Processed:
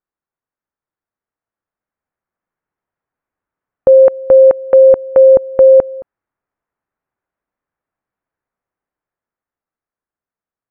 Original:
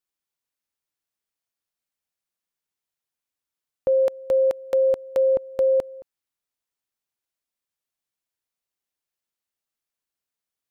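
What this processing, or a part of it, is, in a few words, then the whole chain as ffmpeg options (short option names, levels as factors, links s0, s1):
action camera in a waterproof case: -af "lowpass=f=1700:w=0.5412,lowpass=f=1700:w=1.3066,dynaudnorm=f=370:g=11:m=2.51,volume=1.88" -ar 44100 -c:a aac -b:a 128k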